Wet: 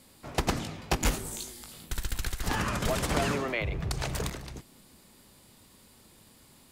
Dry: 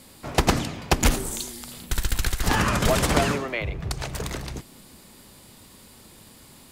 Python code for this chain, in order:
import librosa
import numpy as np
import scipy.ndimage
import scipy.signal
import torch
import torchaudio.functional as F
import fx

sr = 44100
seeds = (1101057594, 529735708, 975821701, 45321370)

y = fx.doubler(x, sr, ms=19.0, db=-5, at=(0.6, 1.89))
y = fx.env_flatten(y, sr, amount_pct=50, at=(3.11, 4.3))
y = y * 10.0 ** (-8.0 / 20.0)